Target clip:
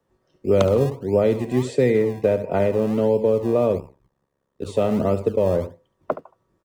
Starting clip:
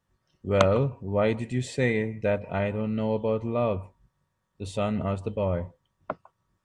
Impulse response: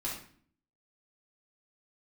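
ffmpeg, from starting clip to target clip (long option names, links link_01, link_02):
-filter_complex "[0:a]aecho=1:1:71:0.211,acrossover=split=180|2200[link_01][link_02][link_03];[link_01]acrusher=samples=34:mix=1:aa=0.000001:lfo=1:lforange=34:lforate=1.5[link_04];[link_04][link_02][link_03]amix=inputs=3:normalize=0,asplit=3[link_05][link_06][link_07];[link_05]afade=type=out:start_time=3.77:duration=0.02[link_08];[link_06]tremolo=f=68:d=1,afade=type=in:start_time=3.77:duration=0.02,afade=type=out:start_time=4.65:duration=0.02[link_09];[link_07]afade=type=in:start_time=4.65:duration=0.02[link_10];[link_08][link_09][link_10]amix=inputs=3:normalize=0,equalizer=frequency=420:width=0.74:gain=15,acrossover=split=210|3000[link_11][link_12][link_13];[link_12]acompressor=threshold=-16dB:ratio=6[link_14];[link_11][link_14][link_13]amix=inputs=3:normalize=0"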